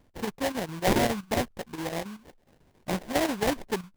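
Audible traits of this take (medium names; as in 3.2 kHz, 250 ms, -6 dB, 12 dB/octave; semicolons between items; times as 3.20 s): aliases and images of a low sample rate 1.3 kHz, jitter 20%; chopped level 7.3 Hz, depth 60%, duty 80%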